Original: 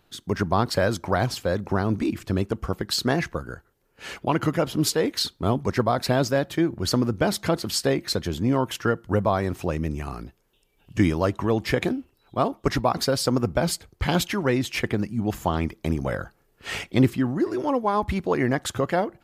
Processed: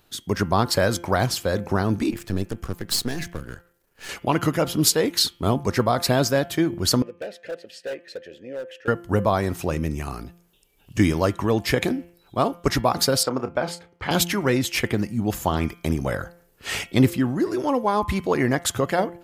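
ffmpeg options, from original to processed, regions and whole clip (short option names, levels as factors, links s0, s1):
-filter_complex "[0:a]asettb=1/sr,asplit=3[s0][s1][s2];[s0]atrim=end=2.114[s3];[s1]atrim=start=2.11:end=4.09,asetpts=PTS-STARTPTS,afade=t=in:d=0.004:c=qsin,afade=t=out:st=1.976:d=0.004:c=qsin,aeval=exprs='if(lt(val(0),0),0.251*val(0),val(0))':c=same,equalizer=f=1700:w=7.6:g=5.5,acrossover=split=410|3000[s4][s5][s6];[s5]acompressor=threshold=0.01:ratio=3:attack=3.2:release=140:knee=2.83:detection=peak[s7];[s4][s7][s6]amix=inputs=3:normalize=0[s8];[s2]atrim=start=4.086[s9];[s3][s8]acrossfade=d=0.004:c1=hsin:c2=qsin[s10];[s10][s9]acrossfade=d=0.004:c1=qsin:c2=hsin,asettb=1/sr,asplit=3[s11][s12][s13];[s11]atrim=end=7.024[s14];[s12]atrim=start=7.02:end=8.88,asetpts=PTS-STARTPTS,afade=t=in:d=0.004:c=qsin,afade=t=out:st=1.856:d=0.004:c=qsin,asplit=3[s15][s16][s17];[s15]bandpass=f=530:t=q:w=8,volume=1[s18];[s16]bandpass=f=1840:t=q:w=8,volume=0.501[s19];[s17]bandpass=f=2480:t=q:w=8,volume=0.355[s20];[s18][s19][s20]amix=inputs=3:normalize=0,asoftclip=type=hard:threshold=0.0398[s21];[s13]atrim=start=8.876[s22];[s14][s21]acrossfade=d=0.004:c1=hsin:c2=qsin[s23];[s23][s22]acrossfade=d=0.004:c1=qsin:c2=hsin,asettb=1/sr,asplit=3[s24][s25][s26];[s24]atrim=end=13.234[s27];[s25]atrim=start=13.23:end=14.11,asetpts=PTS-STARTPTS,afade=t=in:d=0.004:c=qsin,afade=t=out:st=0.876:d=0.004:c=qsin,lowpass=1600,aemphasis=mode=production:type=riaa,asplit=2[s28][s29];[s29]adelay=31,volume=0.266[s30];[s28][s30]amix=inputs=2:normalize=0,atrim=end_sample=38808[s31];[s26]atrim=start=14.106[s32];[s27][s31]acrossfade=d=0.004:c1=hsin:c2=qsin[s33];[s33][s32]acrossfade=d=0.004:c1=qsin:c2=hsin,highshelf=f=5100:g=8.5,bandreject=f=172.8:t=h:w=4,bandreject=f=345.6:t=h:w=4,bandreject=f=518.4:t=h:w=4,bandreject=f=691.2:t=h:w=4,bandreject=f=864:t=h:w=4,bandreject=f=1036.8:t=h:w=4,bandreject=f=1209.6:t=h:w=4,bandreject=f=1382.4:t=h:w=4,bandreject=f=1555.2:t=h:w=4,bandreject=f=1728:t=h:w=4,bandreject=f=1900.8:t=h:w=4,bandreject=f=2073.6:t=h:w=4,bandreject=f=2246.4:t=h:w=4,bandreject=f=2419.2:t=h:w=4,bandreject=f=2592:t=h:w=4,bandreject=f=2764.8:t=h:w=4,bandreject=f=2937.6:t=h:w=4,bandreject=f=3110.4:t=h:w=4,bandreject=f=3283.2:t=h:w=4,volume=1.19"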